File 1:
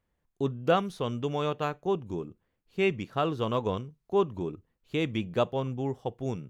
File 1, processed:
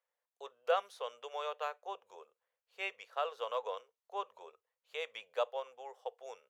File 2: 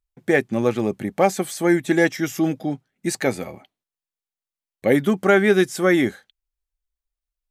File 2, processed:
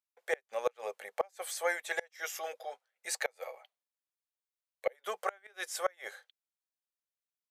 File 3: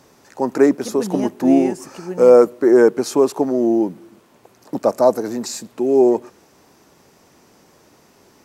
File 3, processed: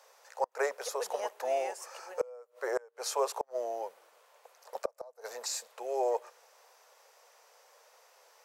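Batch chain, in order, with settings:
elliptic high-pass 490 Hz, stop band 40 dB; inverted gate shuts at -12 dBFS, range -32 dB; trim -6 dB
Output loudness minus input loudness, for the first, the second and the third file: -9.5 LU, -17.0 LU, -19.0 LU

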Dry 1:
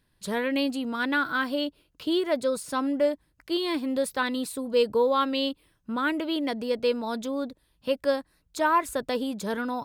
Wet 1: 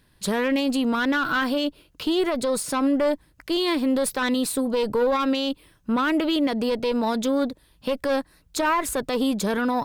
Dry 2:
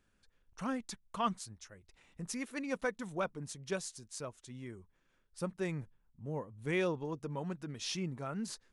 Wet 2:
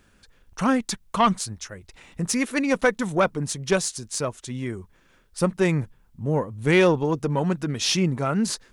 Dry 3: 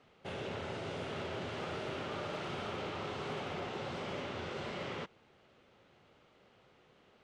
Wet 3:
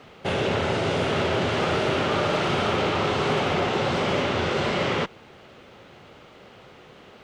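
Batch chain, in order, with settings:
single-diode clipper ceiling -24.5 dBFS; peak limiter -24 dBFS; normalise loudness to -24 LUFS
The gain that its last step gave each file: +9.5 dB, +16.5 dB, +17.0 dB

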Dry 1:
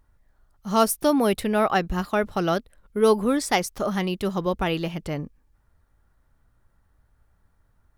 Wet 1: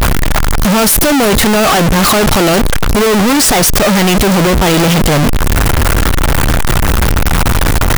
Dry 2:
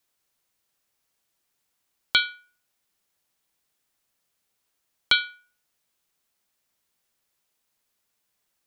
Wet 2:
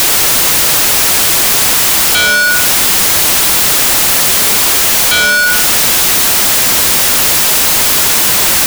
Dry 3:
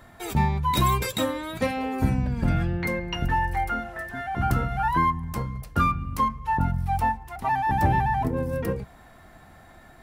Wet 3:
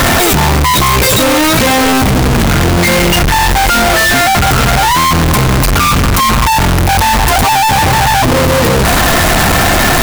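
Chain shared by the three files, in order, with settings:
one-bit comparator; peak normalisation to -9 dBFS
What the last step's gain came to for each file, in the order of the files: +17.0 dB, +27.0 dB, +16.5 dB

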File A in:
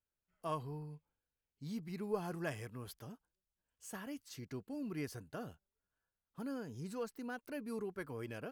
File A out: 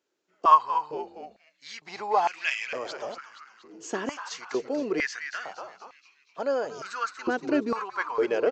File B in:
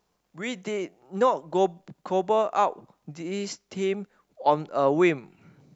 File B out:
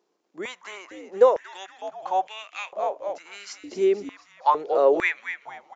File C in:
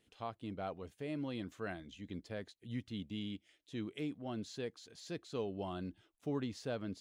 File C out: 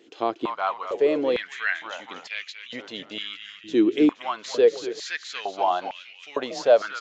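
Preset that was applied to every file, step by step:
resampled via 16 kHz; frequency-shifting echo 236 ms, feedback 53%, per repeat -110 Hz, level -9 dB; step-sequenced high-pass 2.2 Hz 340–2400 Hz; peak normalisation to -6 dBFS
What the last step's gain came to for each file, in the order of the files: +14.0 dB, -3.0 dB, +15.0 dB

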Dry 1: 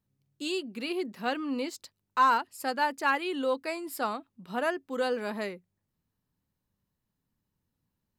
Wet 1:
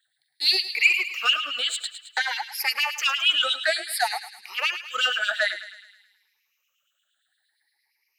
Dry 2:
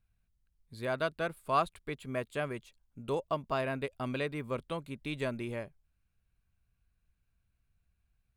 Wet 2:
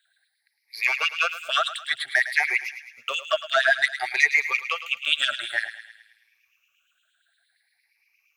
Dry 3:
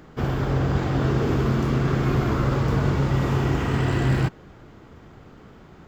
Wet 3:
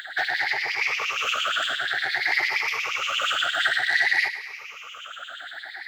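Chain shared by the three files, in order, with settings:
drifting ripple filter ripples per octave 0.82, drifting +0.55 Hz, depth 22 dB; graphic EQ 125/250/500/1000/2000/4000 Hz +8/-10/-11/+10/+10/+5 dB; compression 6:1, threshold -18 dBFS; saturation -16 dBFS; static phaser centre 420 Hz, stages 4; LFO high-pass sine 8.6 Hz 680–3200 Hz; thinning echo 107 ms, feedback 58%, high-pass 1 kHz, level -11 dB; normalise loudness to -23 LUFS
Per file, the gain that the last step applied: +5.0 dB, +7.5 dB, +6.5 dB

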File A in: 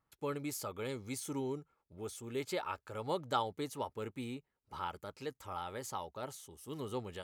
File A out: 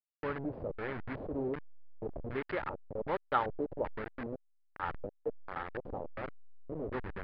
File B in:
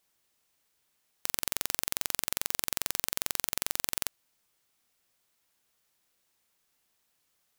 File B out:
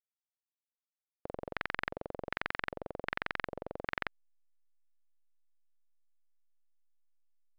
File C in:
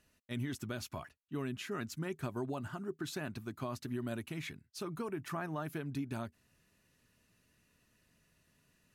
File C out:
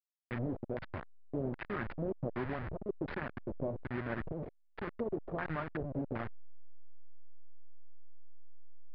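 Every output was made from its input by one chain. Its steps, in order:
send-on-delta sampling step -35.5 dBFS; LFO low-pass square 1.3 Hz 560–1800 Hz; resampled via 11.025 kHz; trim +1 dB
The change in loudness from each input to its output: +2.0 LU, -8.0 LU, +1.0 LU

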